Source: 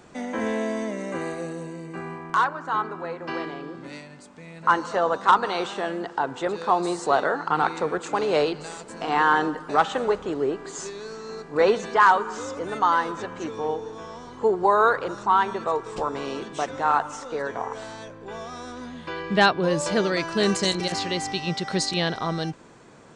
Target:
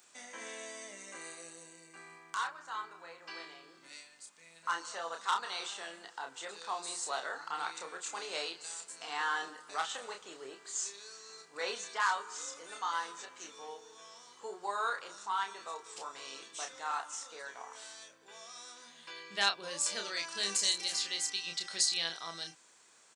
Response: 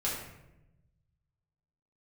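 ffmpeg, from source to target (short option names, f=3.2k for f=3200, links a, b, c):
-filter_complex "[0:a]aderivative,asplit=2[a][b];[b]adelay=30,volume=-5dB[c];[a][c]amix=inputs=2:normalize=0"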